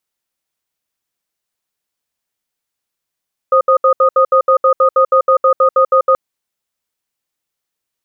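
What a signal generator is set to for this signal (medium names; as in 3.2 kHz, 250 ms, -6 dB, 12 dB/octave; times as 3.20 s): cadence 528 Hz, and 1.24 kHz, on 0.09 s, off 0.07 s, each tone -9.5 dBFS 2.63 s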